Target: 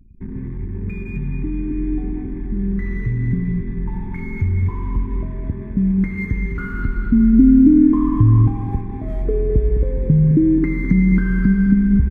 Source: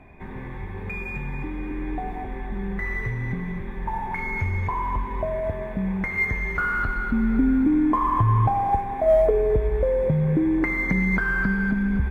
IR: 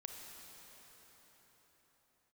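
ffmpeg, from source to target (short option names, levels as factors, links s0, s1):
-af "equalizer=f=660:w=2.5:g=-12,aecho=1:1:209|418|627|836|1045|1254:0.282|0.147|0.0762|0.0396|0.0206|0.0107,anlmdn=0.398,lowshelf=f=430:t=q:w=1.5:g=13.5,volume=0.473"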